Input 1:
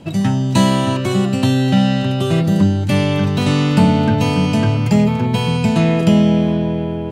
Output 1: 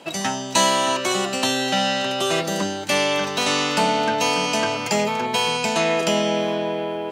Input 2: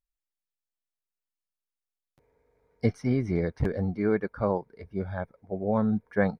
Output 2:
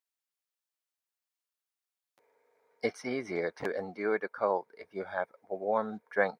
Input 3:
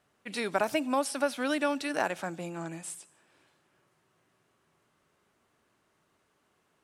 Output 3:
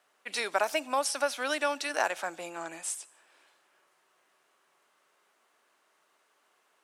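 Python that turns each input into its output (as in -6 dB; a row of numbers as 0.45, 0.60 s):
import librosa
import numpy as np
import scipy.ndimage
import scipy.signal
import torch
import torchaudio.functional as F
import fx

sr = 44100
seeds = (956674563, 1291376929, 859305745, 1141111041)

p1 = scipy.signal.sosfilt(scipy.signal.butter(2, 560.0, 'highpass', fs=sr, output='sos'), x)
p2 = fx.dynamic_eq(p1, sr, hz=6100.0, q=2.2, threshold_db=-50.0, ratio=4.0, max_db=7)
p3 = fx.rider(p2, sr, range_db=3, speed_s=0.5)
p4 = p2 + (p3 * librosa.db_to_amplitude(-3.0))
y = p4 * librosa.db_to_amplitude(-2.0)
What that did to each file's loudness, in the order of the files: -5.5, -5.0, 0.0 LU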